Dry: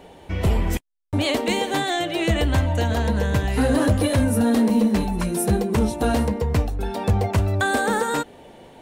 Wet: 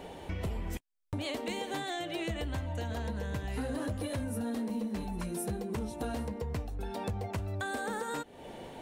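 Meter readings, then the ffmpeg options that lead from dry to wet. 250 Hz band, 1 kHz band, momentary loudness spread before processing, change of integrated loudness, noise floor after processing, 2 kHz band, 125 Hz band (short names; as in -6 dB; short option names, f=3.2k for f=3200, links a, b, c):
-15.5 dB, -14.0 dB, 6 LU, -15.0 dB, -53 dBFS, -14.0 dB, -15.0 dB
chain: -af "acompressor=threshold=-36dB:ratio=4"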